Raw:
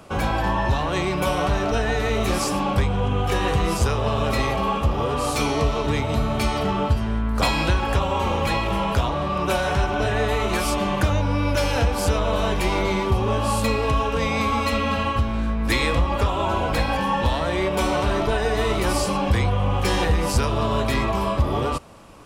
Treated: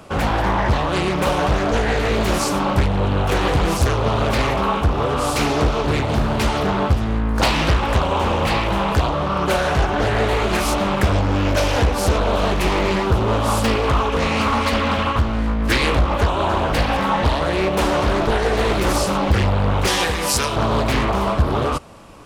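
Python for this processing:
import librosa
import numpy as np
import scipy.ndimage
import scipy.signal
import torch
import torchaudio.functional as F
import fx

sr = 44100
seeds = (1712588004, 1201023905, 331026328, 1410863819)

y = fx.tilt_eq(x, sr, slope=2.5, at=(19.87, 20.56))
y = fx.doppler_dist(y, sr, depth_ms=0.96)
y = y * 10.0 ** (3.5 / 20.0)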